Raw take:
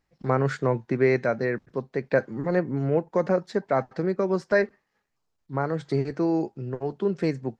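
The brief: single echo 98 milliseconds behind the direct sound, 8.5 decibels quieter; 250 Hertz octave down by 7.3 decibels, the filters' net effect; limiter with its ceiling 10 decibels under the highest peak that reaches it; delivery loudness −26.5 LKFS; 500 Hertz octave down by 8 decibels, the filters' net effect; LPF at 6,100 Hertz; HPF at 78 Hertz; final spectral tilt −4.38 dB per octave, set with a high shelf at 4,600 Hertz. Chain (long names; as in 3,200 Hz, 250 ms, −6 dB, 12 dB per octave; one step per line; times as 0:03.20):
high-pass filter 78 Hz
low-pass filter 6,100 Hz
parametric band 250 Hz −8 dB
parametric band 500 Hz −7.5 dB
high-shelf EQ 4,600 Hz −8 dB
brickwall limiter −22 dBFS
single-tap delay 98 ms −8.5 dB
level +7.5 dB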